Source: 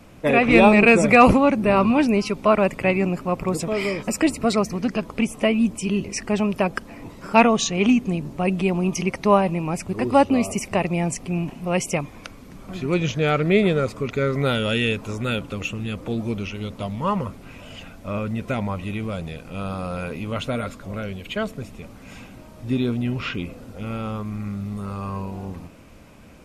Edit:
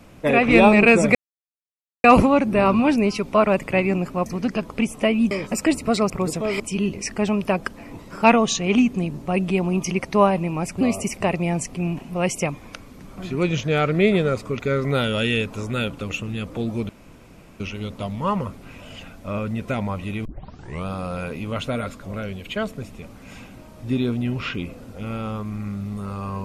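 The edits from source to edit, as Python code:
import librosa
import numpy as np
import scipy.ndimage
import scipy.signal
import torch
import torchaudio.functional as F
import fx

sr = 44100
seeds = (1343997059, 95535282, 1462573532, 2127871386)

y = fx.edit(x, sr, fx.insert_silence(at_s=1.15, length_s=0.89),
    fx.swap(start_s=3.37, length_s=0.5, other_s=4.66, other_length_s=1.05),
    fx.cut(start_s=9.92, length_s=0.4),
    fx.insert_room_tone(at_s=16.4, length_s=0.71),
    fx.tape_start(start_s=19.05, length_s=0.61), tone=tone)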